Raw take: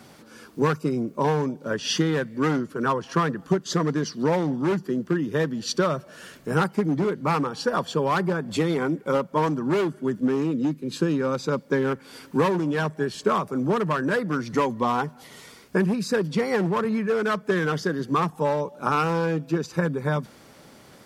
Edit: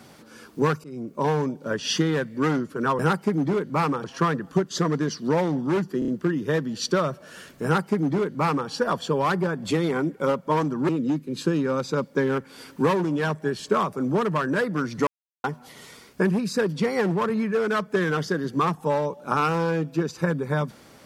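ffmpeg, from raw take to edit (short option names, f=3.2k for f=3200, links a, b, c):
-filter_complex "[0:a]asplit=10[a][b][c][d][e][f][g][h][i][j];[a]atrim=end=0.84,asetpts=PTS-STARTPTS,afade=t=out:st=0.836:d=0.004:c=hsin:silence=0.0630957[k];[b]atrim=start=0.84:end=2.992,asetpts=PTS-STARTPTS,afade=t=in:d=0.59:c=qsin:silence=0.0630957[l];[c]atrim=start=6.498:end=7.552[m];[d]atrim=start=2.988:end=4.972[n];[e]atrim=start=4.938:end=4.972[o];[f]atrim=start=4.938:end=4.972[p];[g]atrim=start=4.938:end=9.752[q];[h]atrim=start=10.438:end=14.62,asetpts=PTS-STARTPTS,afade=t=out:st=4.178:d=0.004:c=hsin[r];[i]atrim=start=14.62:end=14.99,asetpts=PTS-STARTPTS,volume=0[s];[j]atrim=start=14.99,asetpts=PTS-STARTPTS,afade=t=in:d=0.004:c=hsin[t];[k][l]concat=n=2:v=0:a=1[u];[u][m]acrossfade=d=0.004:c1=hsin:c2=hsin[v];[v][n]acrossfade=d=0.004:c1=hsin:c2=hsin[w];[w][o]acrossfade=d=0.004:c1=hsin:c2=hsin[x];[x][p]acrossfade=d=0.004:c1=hsin:c2=hsin[y];[y][q]acrossfade=d=0.004:c1=hsin:c2=hsin[z];[r][s][t]concat=n=3:v=0:a=1[aa];[z][aa]acrossfade=d=0.004:c1=hsin:c2=hsin"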